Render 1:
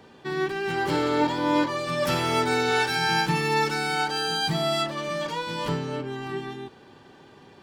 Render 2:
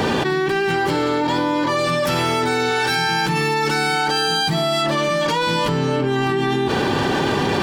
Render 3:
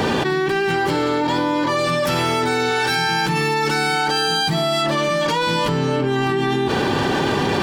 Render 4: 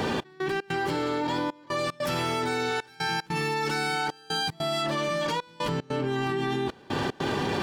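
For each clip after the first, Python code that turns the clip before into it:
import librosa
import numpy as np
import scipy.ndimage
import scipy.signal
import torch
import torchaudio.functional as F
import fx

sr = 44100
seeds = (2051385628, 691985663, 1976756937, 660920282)

y1 = fx.env_flatten(x, sr, amount_pct=100)
y2 = y1
y3 = fx.step_gate(y2, sr, bpm=150, pattern='xx..xx.xxxxxx', floor_db=-24.0, edge_ms=4.5)
y3 = F.gain(torch.from_numpy(y3), -8.5).numpy()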